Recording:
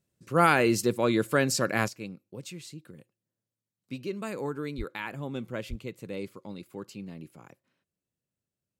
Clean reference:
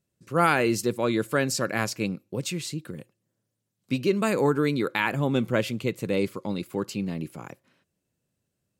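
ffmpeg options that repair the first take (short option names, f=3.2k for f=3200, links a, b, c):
-filter_complex "[0:a]asplit=3[a][b][c];[a]afade=t=out:st=4.77:d=0.02[d];[b]highpass=f=140:w=0.5412,highpass=f=140:w=1.3066,afade=t=in:st=4.77:d=0.02,afade=t=out:st=4.89:d=0.02[e];[c]afade=t=in:st=4.89:d=0.02[f];[d][e][f]amix=inputs=3:normalize=0,asplit=3[g][h][i];[g]afade=t=out:st=5.69:d=0.02[j];[h]highpass=f=140:w=0.5412,highpass=f=140:w=1.3066,afade=t=in:st=5.69:d=0.02,afade=t=out:st=5.81:d=0.02[k];[i]afade=t=in:st=5.81:d=0.02[l];[j][k][l]amix=inputs=3:normalize=0,asetnsamples=n=441:p=0,asendcmd='1.88 volume volume 11dB',volume=0dB"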